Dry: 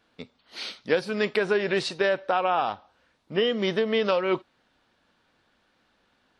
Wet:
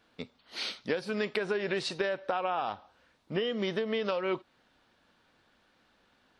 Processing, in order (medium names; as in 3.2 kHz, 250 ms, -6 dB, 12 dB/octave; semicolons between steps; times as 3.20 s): compression 5:1, threshold -28 dBFS, peak gain reduction 10 dB